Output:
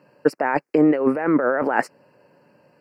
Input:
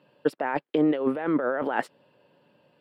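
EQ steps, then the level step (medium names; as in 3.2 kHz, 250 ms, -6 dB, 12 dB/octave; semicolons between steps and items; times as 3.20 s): Butterworth band-stop 3.5 kHz, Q 1.2; peaking EQ 4.2 kHz +9.5 dB 1.2 oct; +6.0 dB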